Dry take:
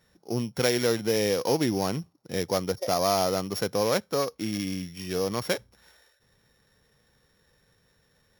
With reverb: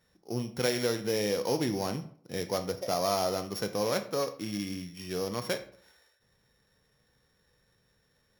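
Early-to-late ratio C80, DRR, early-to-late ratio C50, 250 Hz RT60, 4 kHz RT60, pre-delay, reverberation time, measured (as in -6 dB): 16.0 dB, 8.5 dB, 13.0 dB, 0.50 s, 0.35 s, 15 ms, 0.55 s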